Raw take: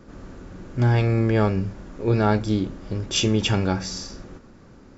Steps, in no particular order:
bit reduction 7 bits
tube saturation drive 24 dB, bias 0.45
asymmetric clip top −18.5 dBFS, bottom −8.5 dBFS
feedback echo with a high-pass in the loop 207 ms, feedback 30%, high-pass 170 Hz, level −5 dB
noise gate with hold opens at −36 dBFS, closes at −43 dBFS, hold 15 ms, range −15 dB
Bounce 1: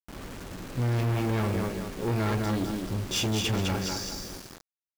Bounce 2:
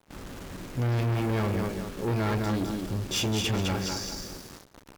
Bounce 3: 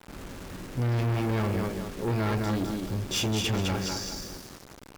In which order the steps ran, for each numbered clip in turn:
feedback echo with a high-pass in the loop, then asymmetric clip, then noise gate with hold, then tube saturation, then bit reduction
feedback echo with a high-pass in the loop, then bit reduction, then tube saturation, then asymmetric clip, then noise gate with hold
feedback echo with a high-pass in the loop, then asymmetric clip, then bit reduction, then noise gate with hold, then tube saturation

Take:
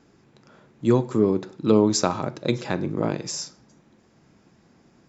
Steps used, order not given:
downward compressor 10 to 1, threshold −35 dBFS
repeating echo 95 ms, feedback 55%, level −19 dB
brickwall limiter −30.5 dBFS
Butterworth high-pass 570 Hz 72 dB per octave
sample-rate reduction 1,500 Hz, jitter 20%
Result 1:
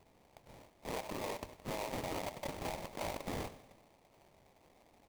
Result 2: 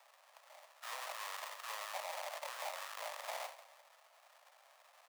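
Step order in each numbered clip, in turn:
Butterworth high-pass, then sample-rate reduction, then brickwall limiter, then repeating echo, then downward compressor
repeating echo, then sample-rate reduction, then brickwall limiter, then Butterworth high-pass, then downward compressor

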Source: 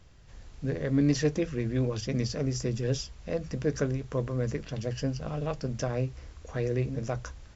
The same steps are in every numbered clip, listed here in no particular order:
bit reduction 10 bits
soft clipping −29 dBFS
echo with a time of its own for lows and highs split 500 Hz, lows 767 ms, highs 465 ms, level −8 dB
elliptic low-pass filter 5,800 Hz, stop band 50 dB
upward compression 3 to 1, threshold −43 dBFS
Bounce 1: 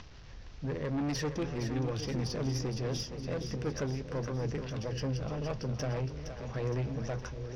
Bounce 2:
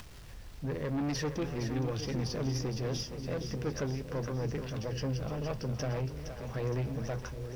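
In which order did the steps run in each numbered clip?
bit reduction, then upward compression, then elliptic low-pass filter, then soft clipping, then echo with a time of its own for lows and highs
elliptic low-pass filter, then bit reduction, then soft clipping, then echo with a time of its own for lows and highs, then upward compression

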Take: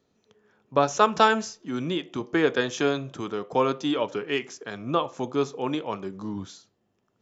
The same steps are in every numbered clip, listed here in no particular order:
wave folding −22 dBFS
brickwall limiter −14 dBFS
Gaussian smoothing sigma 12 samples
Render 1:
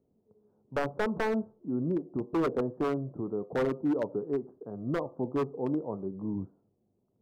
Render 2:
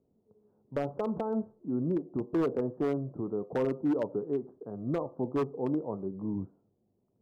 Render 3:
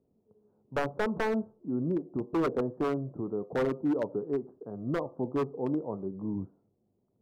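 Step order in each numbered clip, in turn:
Gaussian smoothing, then brickwall limiter, then wave folding
brickwall limiter, then Gaussian smoothing, then wave folding
Gaussian smoothing, then wave folding, then brickwall limiter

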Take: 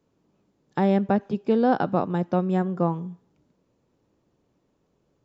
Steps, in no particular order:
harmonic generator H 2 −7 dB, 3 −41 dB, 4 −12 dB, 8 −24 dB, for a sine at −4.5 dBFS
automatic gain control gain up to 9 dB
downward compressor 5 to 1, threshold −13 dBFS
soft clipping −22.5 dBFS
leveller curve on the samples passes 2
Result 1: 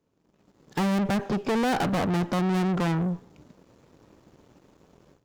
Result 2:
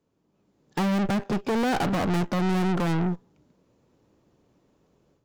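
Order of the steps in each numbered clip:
downward compressor, then automatic gain control, then soft clipping, then leveller curve on the samples, then harmonic generator
leveller curve on the samples, then downward compressor, then automatic gain control, then harmonic generator, then soft clipping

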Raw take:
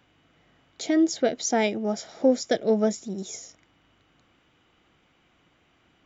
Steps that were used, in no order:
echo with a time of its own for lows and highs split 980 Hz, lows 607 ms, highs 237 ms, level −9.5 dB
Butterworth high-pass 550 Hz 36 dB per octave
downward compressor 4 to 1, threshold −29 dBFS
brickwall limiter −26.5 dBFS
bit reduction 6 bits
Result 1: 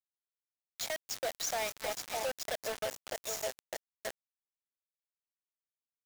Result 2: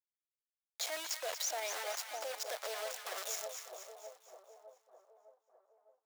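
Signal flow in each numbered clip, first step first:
echo with a time of its own for lows and highs, then downward compressor, then Butterworth high-pass, then brickwall limiter, then bit reduction
downward compressor, then bit reduction, then echo with a time of its own for lows and highs, then brickwall limiter, then Butterworth high-pass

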